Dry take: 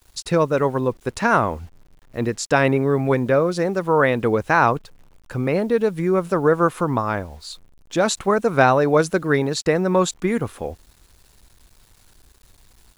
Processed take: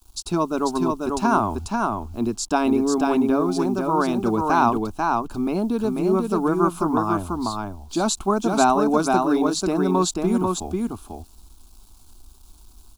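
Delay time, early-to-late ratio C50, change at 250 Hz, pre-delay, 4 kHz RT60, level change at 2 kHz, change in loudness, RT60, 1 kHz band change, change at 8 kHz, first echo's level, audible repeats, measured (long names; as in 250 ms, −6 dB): 491 ms, no reverb audible, +2.5 dB, no reverb audible, no reverb audible, −8.5 dB, −2.0 dB, no reverb audible, +0.5 dB, +2.0 dB, −3.5 dB, 1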